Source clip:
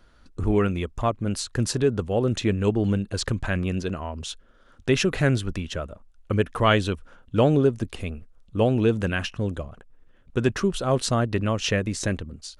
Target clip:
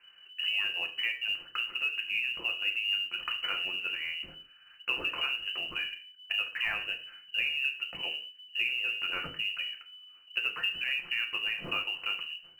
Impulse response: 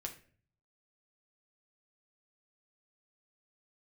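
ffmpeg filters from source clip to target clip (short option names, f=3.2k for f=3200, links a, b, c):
-filter_complex "[0:a]acompressor=threshold=-26dB:ratio=6,lowpass=f=2.6k:t=q:w=0.5098,lowpass=f=2.6k:t=q:w=0.6013,lowpass=f=2.6k:t=q:w=0.9,lowpass=f=2.6k:t=q:w=2.563,afreqshift=-3000[a];[1:a]atrim=start_sample=2205,afade=t=out:st=0.26:d=0.01,atrim=end_sample=11907[b];[a][b]afir=irnorm=-1:irlink=0,acrusher=bits=8:mode=log:mix=0:aa=0.000001"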